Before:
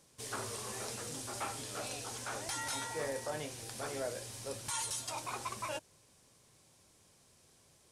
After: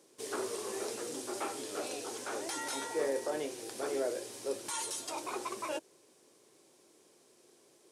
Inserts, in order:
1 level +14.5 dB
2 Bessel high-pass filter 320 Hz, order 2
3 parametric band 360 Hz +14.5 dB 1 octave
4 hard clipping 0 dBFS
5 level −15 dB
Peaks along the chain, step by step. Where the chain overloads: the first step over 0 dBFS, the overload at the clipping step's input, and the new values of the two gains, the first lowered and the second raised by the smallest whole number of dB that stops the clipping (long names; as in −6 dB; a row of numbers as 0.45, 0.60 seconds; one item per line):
−11.0, −11.0, −6.0, −6.0, −21.0 dBFS
no step passes full scale